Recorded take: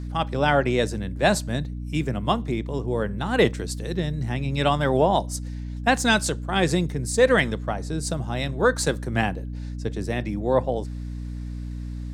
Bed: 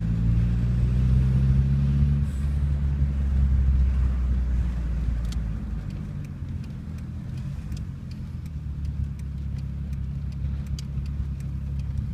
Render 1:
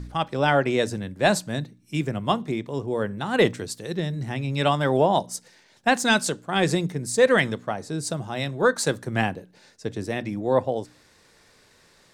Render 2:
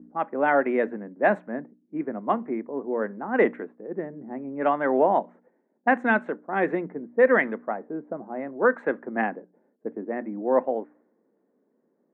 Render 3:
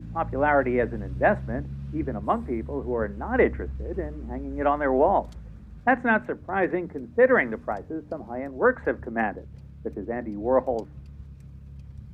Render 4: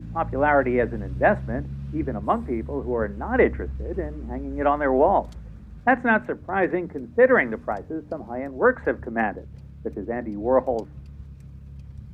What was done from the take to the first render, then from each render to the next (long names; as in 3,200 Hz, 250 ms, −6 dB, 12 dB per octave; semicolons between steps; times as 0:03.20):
hum removal 60 Hz, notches 5
elliptic band-pass filter 230–2,000 Hz, stop band 40 dB; low-pass that shuts in the quiet parts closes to 320 Hz, open at −17 dBFS
mix in bed −13.5 dB
level +2 dB